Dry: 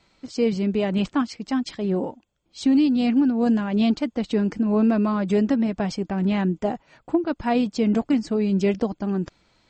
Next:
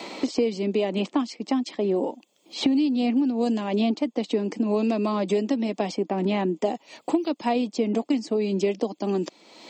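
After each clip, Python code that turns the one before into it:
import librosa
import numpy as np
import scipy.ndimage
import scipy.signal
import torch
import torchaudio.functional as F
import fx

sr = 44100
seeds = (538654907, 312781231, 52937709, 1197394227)

y = scipy.signal.sosfilt(scipy.signal.butter(4, 250.0, 'highpass', fs=sr, output='sos'), x)
y = fx.peak_eq(y, sr, hz=1500.0, db=-14.0, octaves=0.52)
y = fx.band_squash(y, sr, depth_pct=100)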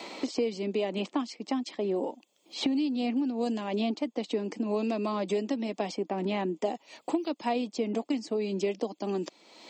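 y = fx.low_shelf(x, sr, hz=270.0, db=-5.0)
y = y * 10.0 ** (-4.0 / 20.0)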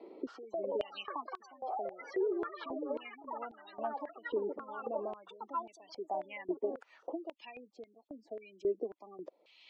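y = fx.echo_pitch(x, sr, ms=262, semitones=6, count=3, db_per_echo=-3.0)
y = fx.spec_gate(y, sr, threshold_db=-20, keep='strong')
y = fx.filter_held_bandpass(y, sr, hz=3.7, low_hz=390.0, high_hz=3900.0)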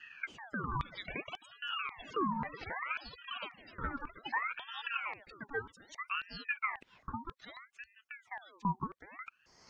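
y = fx.ring_lfo(x, sr, carrier_hz=1400.0, swing_pct=60, hz=0.63)
y = y * 10.0 ** (2.0 / 20.0)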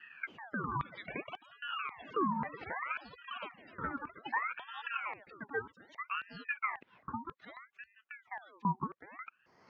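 y = fx.bandpass_edges(x, sr, low_hz=120.0, high_hz=2200.0)
y = y * 10.0 ** (1.5 / 20.0)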